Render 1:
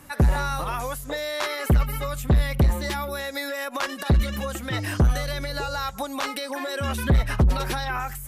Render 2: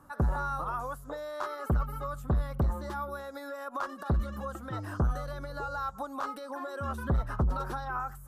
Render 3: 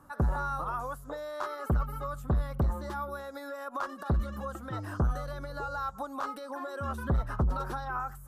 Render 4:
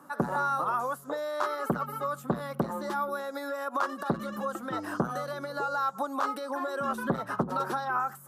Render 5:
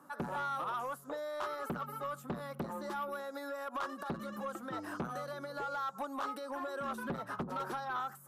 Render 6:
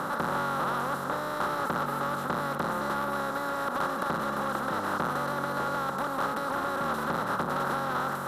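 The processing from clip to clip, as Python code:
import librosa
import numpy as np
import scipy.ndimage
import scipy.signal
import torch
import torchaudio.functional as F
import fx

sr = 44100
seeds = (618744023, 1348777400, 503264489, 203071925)

y1 = fx.high_shelf_res(x, sr, hz=1700.0, db=-9.0, q=3.0)
y1 = y1 * librosa.db_to_amplitude(-9.0)
y2 = y1
y3 = scipy.signal.sosfilt(scipy.signal.butter(4, 180.0, 'highpass', fs=sr, output='sos'), y2)
y3 = y3 * librosa.db_to_amplitude(5.5)
y4 = 10.0 ** (-24.5 / 20.0) * np.tanh(y3 / 10.0 ** (-24.5 / 20.0))
y4 = y4 * librosa.db_to_amplitude(-6.0)
y5 = fx.bin_compress(y4, sr, power=0.2)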